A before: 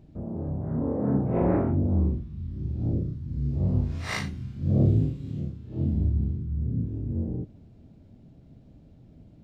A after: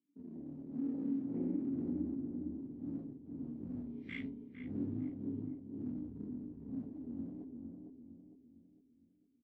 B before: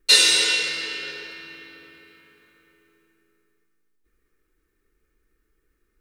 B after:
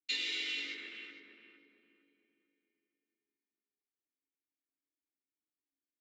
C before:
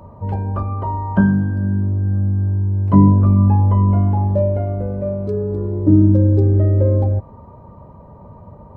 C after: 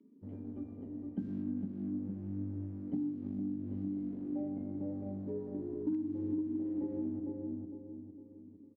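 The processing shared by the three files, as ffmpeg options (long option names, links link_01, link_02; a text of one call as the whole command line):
ffmpeg -i in.wav -filter_complex "[0:a]asplit=3[link_01][link_02][link_03];[link_01]bandpass=frequency=270:width_type=q:width=8,volume=0dB[link_04];[link_02]bandpass=frequency=2290:width_type=q:width=8,volume=-6dB[link_05];[link_03]bandpass=frequency=3010:width_type=q:width=8,volume=-9dB[link_06];[link_04][link_05][link_06]amix=inputs=3:normalize=0,afwtdn=0.00794,acrossover=split=170[link_07][link_08];[link_07]aeval=exprs='sgn(val(0))*max(abs(val(0))-0.00119,0)':channel_layout=same[link_09];[link_09][link_08]amix=inputs=2:normalize=0,flanger=delay=9.5:depth=8.7:regen=44:speed=0.4:shape=triangular,asplit=2[link_10][link_11];[link_11]adelay=456,lowpass=frequency=940:poles=1,volume=-4dB,asplit=2[link_12][link_13];[link_13]adelay=456,lowpass=frequency=940:poles=1,volume=0.45,asplit=2[link_14][link_15];[link_15]adelay=456,lowpass=frequency=940:poles=1,volume=0.45,asplit=2[link_16][link_17];[link_17]adelay=456,lowpass=frequency=940:poles=1,volume=0.45,asplit=2[link_18][link_19];[link_19]adelay=456,lowpass=frequency=940:poles=1,volume=0.45,asplit=2[link_20][link_21];[link_21]adelay=456,lowpass=frequency=940:poles=1,volume=0.45[link_22];[link_10][link_12][link_14][link_16][link_18][link_20][link_22]amix=inputs=7:normalize=0,aeval=exprs='0.168*(cos(1*acos(clip(val(0)/0.168,-1,1)))-cos(1*PI/2))+0.00168*(cos(5*acos(clip(val(0)/0.168,-1,1)))-cos(5*PI/2))':channel_layout=same,acompressor=threshold=-34dB:ratio=12,bandreject=frequency=65.97:width_type=h:width=4,bandreject=frequency=131.94:width_type=h:width=4,bandreject=frequency=197.91:width_type=h:width=4,bandreject=frequency=263.88:width_type=h:width=4,bandreject=frequency=329.85:width_type=h:width=4,bandreject=frequency=395.82:width_type=h:width=4,bandreject=frequency=461.79:width_type=h:width=4,volume=2.5dB" out.wav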